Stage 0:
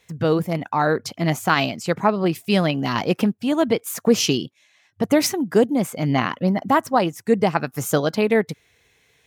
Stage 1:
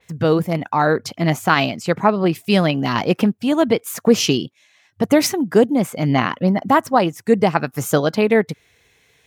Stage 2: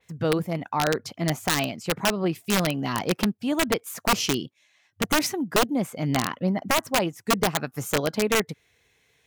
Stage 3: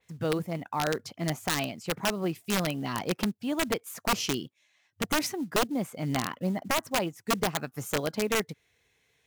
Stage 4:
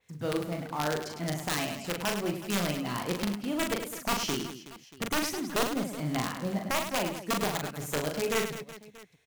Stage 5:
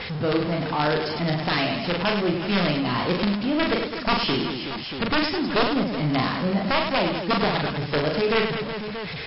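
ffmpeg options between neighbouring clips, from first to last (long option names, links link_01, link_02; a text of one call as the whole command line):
ffmpeg -i in.wav -af "adynamicequalizer=threshold=0.0112:dfrequency=4100:dqfactor=0.7:tfrequency=4100:tqfactor=0.7:attack=5:release=100:ratio=0.375:range=2:mode=cutabove:tftype=highshelf,volume=3dB" out.wav
ffmpeg -i in.wav -af "aeval=exprs='(mod(2*val(0)+1,2)-1)/2':channel_layout=same,volume=-7.5dB" out.wav
ffmpeg -i in.wav -af "acrusher=bits=7:mode=log:mix=0:aa=0.000001,volume=-5dB" out.wav
ffmpeg -i in.wav -filter_complex "[0:a]asplit=2[link_01][link_02];[link_02]aeval=exprs='(mod(42.2*val(0)+1,2)-1)/42.2':channel_layout=same,volume=-12dB[link_03];[link_01][link_03]amix=inputs=2:normalize=0,aecho=1:1:40|104|206.4|370.2|632.4:0.631|0.398|0.251|0.158|0.1,volume=-3.5dB" out.wav
ffmpeg -i in.wav -af "aeval=exprs='val(0)+0.5*0.0251*sgn(val(0))':channel_layout=same,volume=6dB" -ar 12000 -c:a libmp3lame -b:a 24k out.mp3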